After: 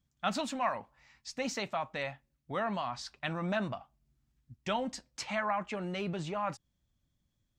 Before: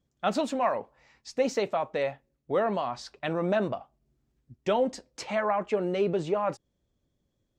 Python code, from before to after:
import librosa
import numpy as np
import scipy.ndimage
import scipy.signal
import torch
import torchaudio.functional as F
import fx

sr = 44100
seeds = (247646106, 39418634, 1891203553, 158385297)

y = fx.peak_eq(x, sr, hz=440.0, db=-15.0, octaves=1.2)